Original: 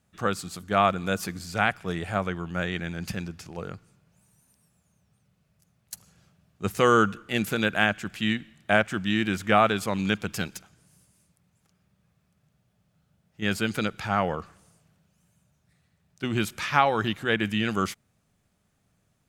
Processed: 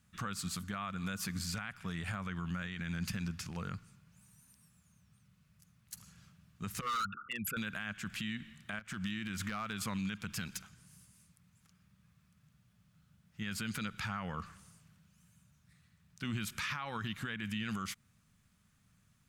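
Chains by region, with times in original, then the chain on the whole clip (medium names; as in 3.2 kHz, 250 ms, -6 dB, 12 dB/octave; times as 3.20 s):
6.81–7.57 s: resonances exaggerated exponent 3 + resonant low shelf 570 Hz -11.5 dB, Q 1.5 + overload inside the chain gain 25 dB
8.79–9.82 s: compression 8:1, threshold -32 dBFS + hard clipper -27 dBFS
whole clip: compression 6:1, threshold -29 dBFS; high-order bell 500 Hz -11 dB; peak limiter -29.5 dBFS; trim +1 dB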